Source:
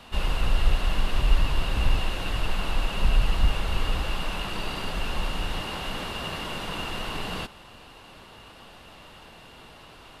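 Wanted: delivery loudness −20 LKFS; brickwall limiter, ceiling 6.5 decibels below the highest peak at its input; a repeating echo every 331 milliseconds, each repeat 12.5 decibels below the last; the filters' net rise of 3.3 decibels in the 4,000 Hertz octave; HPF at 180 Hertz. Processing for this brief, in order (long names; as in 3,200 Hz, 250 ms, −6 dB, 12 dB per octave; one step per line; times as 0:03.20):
high-pass filter 180 Hz
parametric band 4,000 Hz +5 dB
brickwall limiter −25 dBFS
repeating echo 331 ms, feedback 24%, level −12.5 dB
level +12.5 dB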